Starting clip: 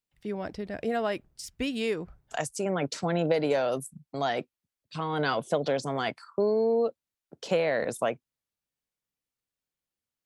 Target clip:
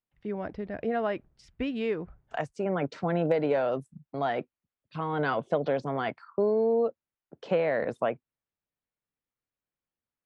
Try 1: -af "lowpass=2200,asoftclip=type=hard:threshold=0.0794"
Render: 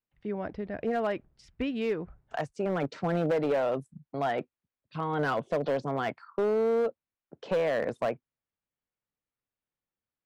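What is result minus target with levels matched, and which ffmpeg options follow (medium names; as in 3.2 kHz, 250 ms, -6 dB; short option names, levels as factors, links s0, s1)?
hard clipper: distortion +33 dB
-af "lowpass=2200,asoftclip=type=hard:threshold=0.178"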